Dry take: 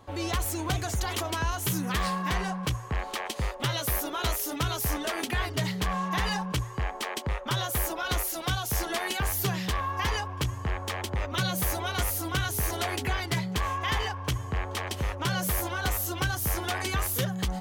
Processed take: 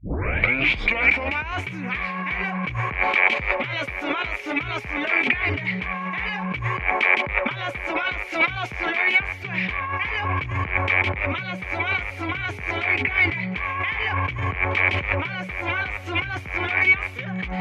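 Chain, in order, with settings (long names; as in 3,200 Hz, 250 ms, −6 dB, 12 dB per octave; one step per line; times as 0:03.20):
turntable start at the beginning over 1.51 s
high-pass filter 56 Hz 12 dB per octave
compressor whose output falls as the input rises −38 dBFS, ratio −1
low-pass with resonance 2,300 Hz, resonance Q 12
level +8.5 dB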